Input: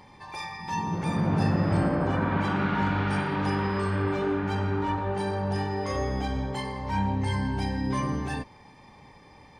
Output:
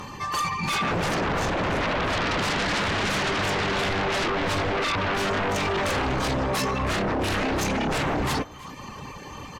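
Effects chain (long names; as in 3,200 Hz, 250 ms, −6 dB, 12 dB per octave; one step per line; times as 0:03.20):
reverb reduction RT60 0.64 s
brickwall limiter −23 dBFS, peak gain reduction 8.5 dB
formants moved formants +4 semitones
sine wavefolder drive 13 dB, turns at −20 dBFS
single-tap delay 320 ms −20.5 dB
level −2 dB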